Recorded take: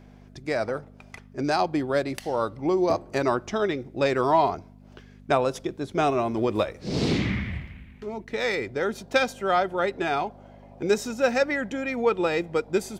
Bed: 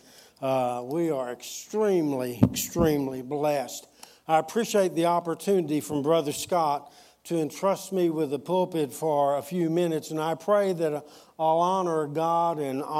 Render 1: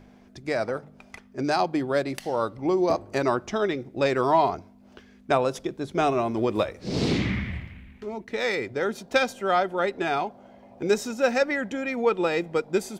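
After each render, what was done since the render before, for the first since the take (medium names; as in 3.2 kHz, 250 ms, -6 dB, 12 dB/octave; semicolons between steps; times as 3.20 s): de-hum 50 Hz, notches 3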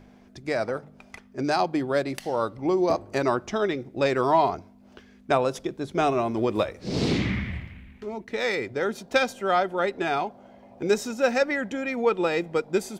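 no audible change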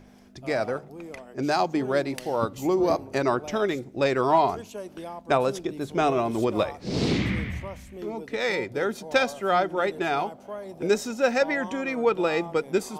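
add bed -14.5 dB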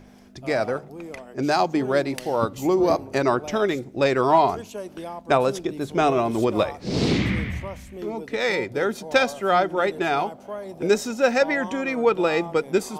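trim +3 dB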